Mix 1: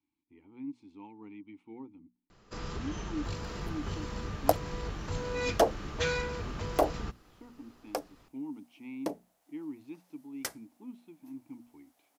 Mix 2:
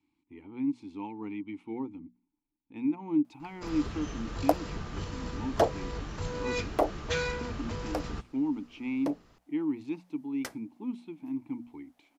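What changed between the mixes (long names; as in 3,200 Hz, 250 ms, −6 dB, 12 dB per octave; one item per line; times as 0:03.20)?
speech +10.0 dB
first sound: entry +1.10 s
second sound: add high-shelf EQ 5,100 Hz −10 dB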